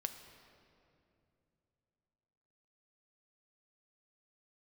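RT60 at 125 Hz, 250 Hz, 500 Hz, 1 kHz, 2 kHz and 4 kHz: 3.7, 3.4, 3.1, 2.4, 2.1, 1.7 seconds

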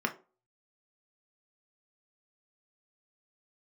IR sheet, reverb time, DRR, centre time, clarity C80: 0.35 s, 2.5 dB, 8 ms, 21.0 dB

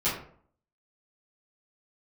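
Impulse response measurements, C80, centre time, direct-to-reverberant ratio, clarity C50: 9.0 dB, 38 ms, −12.5 dB, 5.0 dB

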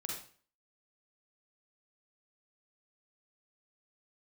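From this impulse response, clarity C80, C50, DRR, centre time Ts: 7.0 dB, 1.5 dB, −1.5 dB, 43 ms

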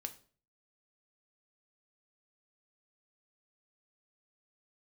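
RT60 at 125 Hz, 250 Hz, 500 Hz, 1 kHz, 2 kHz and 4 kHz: 0.60, 0.50, 0.50, 0.40, 0.35, 0.35 seconds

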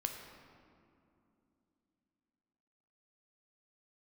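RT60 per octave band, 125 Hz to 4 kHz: 3.3, 4.1, 2.9, 2.5, 1.9, 1.3 seconds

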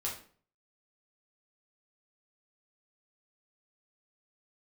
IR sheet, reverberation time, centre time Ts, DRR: 0.45 s, 29 ms, −4.5 dB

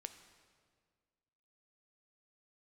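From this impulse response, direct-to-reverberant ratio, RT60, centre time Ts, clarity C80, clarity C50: 8.5 dB, 1.8 s, 16 ms, 11.5 dB, 10.5 dB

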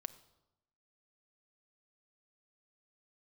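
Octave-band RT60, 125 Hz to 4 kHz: 1.1, 1.0, 0.90, 0.90, 0.70, 0.70 seconds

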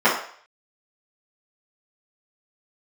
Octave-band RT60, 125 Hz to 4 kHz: 0.30, 0.35, 0.50, 0.55, 0.55, 0.55 seconds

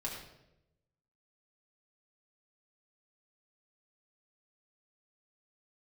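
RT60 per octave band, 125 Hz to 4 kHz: 1.3, 1.0, 1.0, 0.75, 0.70, 0.65 seconds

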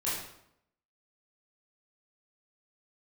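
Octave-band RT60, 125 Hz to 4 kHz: 0.80, 0.80, 0.80, 0.75, 0.65, 0.60 seconds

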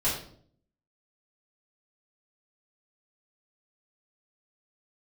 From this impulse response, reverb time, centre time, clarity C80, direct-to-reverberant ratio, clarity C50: 0.55 s, 38 ms, 8.5 dB, −10.0 dB, 4.5 dB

